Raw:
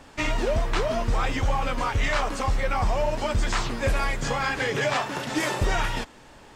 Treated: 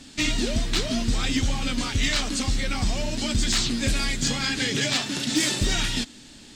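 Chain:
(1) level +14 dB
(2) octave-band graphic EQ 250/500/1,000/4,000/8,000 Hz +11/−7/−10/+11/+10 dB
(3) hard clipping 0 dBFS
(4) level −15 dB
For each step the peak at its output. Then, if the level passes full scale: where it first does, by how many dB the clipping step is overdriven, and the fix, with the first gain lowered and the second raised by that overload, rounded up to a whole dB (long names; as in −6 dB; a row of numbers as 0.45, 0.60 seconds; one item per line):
+1.0, +7.0, 0.0, −15.0 dBFS
step 1, 7.0 dB
step 1 +7 dB, step 4 −8 dB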